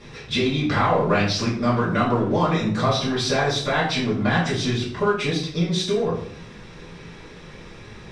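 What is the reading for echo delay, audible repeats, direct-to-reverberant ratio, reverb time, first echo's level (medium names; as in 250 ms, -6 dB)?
no echo, no echo, -9.0 dB, 0.55 s, no echo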